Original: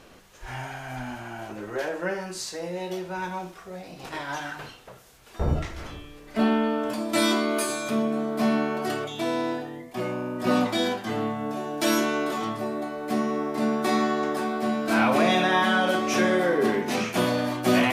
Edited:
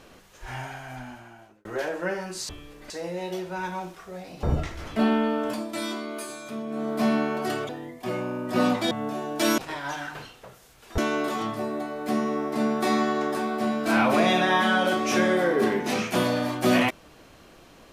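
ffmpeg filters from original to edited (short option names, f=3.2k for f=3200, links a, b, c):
-filter_complex "[0:a]asplit=12[a][b][c][d][e][f][g][h][i][j][k][l];[a]atrim=end=1.65,asetpts=PTS-STARTPTS,afade=t=out:st=0.57:d=1.08[m];[b]atrim=start=1.65:end=2.492,asetpts=PTS-STARTPTS,afade=t=in:d=0.004:c=hsin[n];[c]atrim=start=5.948:end=6.362[o];[d]atrim=start=2.488:end=4.022[p];[e]atrim=start=5.418:end=5.952[q];[f]atrim=start=6.358:end=7.16,asetpts=PTS-STARTPTS,afade=t=out:st=0.572:d=0.23:silence=0.354813[r];[g]atrim=start=7.16:end=8.06,asetpts=PTS-STARTPTS,volume=-9dB[s];[h]atrim=start=8.06:end=9.092,asetpts=PTS-STARTPTS,afade=t=in:d=0.23:silence=0.354813[t];[i]atrim=start=9.598:end=10.822[u];[j]atrim=start=11.328:end=12.002[v];[k]atrim=start=4.018:end=5.422[w];[l]atrim=start=11.998[x];[m][n]concat=n=2:v=0:a=1[y];[y][o]acrossfade=d=0.004:c1=hsin:c2=hsin[z];[z][p]acrossfade=d=0.004:c1=hsin:c2=hsin[aa];[aa][q]acrossfade=d=0.004:c1=hsin:c2=hsin[ab];[r][s][t]concat=n=3:v=0:a=1[ac];[ab][ac]acrossfade=d=0.004:c1=hsin:c2=hsin[ad];[ad][u]acrossfade=d=0.004:c1=hsin:c2=hsin[ae];[ae][v]acrossfade=d=0.004:c1=hsin:c2=hsin[af];[af][w]acrossfade=d=0.004:c1=hsin:c2=hsin[ag];[ag][x]acrossfade=d=0.004:c1=hsin:c2=hsin"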